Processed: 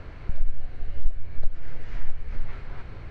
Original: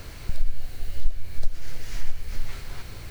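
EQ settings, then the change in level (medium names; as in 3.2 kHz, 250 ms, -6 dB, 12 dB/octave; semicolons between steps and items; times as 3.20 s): low-pass 1.9 kHz 12 dB/octave; 0.0 dB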